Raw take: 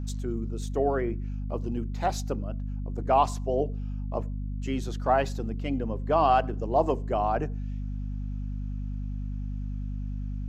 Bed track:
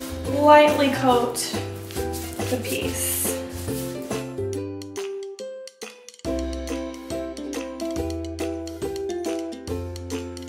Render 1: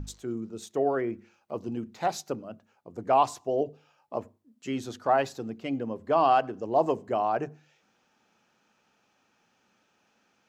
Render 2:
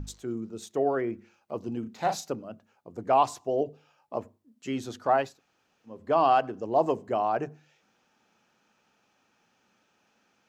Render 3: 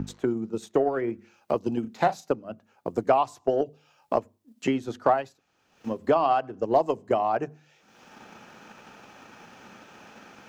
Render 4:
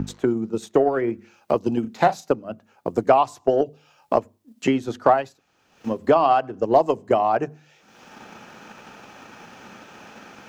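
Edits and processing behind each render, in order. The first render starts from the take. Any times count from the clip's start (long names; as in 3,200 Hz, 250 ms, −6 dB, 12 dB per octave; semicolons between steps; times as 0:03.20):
mains-hum notches 50/100/150/200/250 Hz
0:01.80–0:02.29: double-tracking delay 36 ms −6.5 dB; 0:05.28–0:05.96: fill with room tone, crossfade 0.24 s
transient designer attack +8 dB, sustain −5 dB; multiband upward and downward compressor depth 70%
level +5 dB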